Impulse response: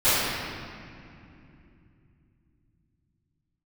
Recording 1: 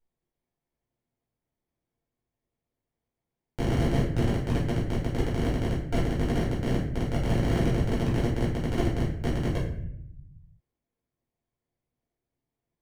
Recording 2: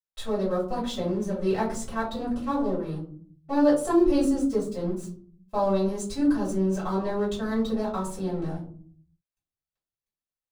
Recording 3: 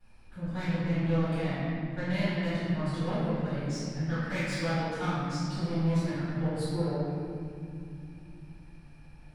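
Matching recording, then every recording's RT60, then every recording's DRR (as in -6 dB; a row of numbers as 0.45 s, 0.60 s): 3; 0.70 s, 0.55 s, 2.7 s; -8.0 dB, -10.0 dB, -22.0 dB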